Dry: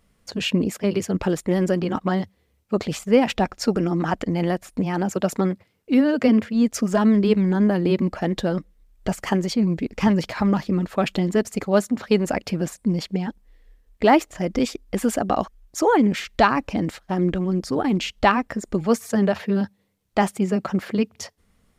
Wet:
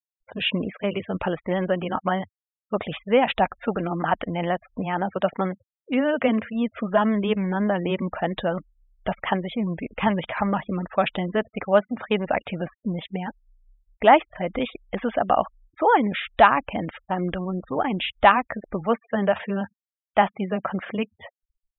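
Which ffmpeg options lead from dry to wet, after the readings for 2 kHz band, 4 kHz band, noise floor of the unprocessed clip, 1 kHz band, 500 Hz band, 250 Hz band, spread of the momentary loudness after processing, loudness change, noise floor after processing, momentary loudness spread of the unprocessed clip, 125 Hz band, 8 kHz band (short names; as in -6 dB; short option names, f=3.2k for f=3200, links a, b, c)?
+2.0 dB, -0.5 dB, -65 dBFS, +3.0 dB, -1.0 dB, -6.0 dB, 11 LU, -2.0 dB, under -85 dBFS, 9 LU, -6.0 dB, under -40 dB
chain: -af "aresample=8000,aresample=44100,afftfilt=real='re*gte(hypot(re,im),0.0126)':imag='im*gte(hypot(re,im),0.0126)':win_size=1024:overlap=0.75,lowshelf=f=490:t=q:w=1.5:g=-6.5,volume=1.5dB"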